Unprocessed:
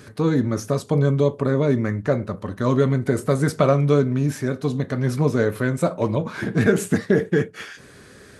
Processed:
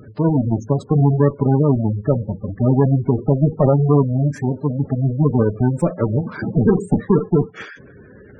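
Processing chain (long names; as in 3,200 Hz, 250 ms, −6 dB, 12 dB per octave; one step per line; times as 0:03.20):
each half-wave held at its own peak
harmonic generator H 2 −25 dB, 6 −15 dB, 8 −19 dB, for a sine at −3.5 dBFS
gate on every frequency bin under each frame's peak −15 dB strong
level −1 dB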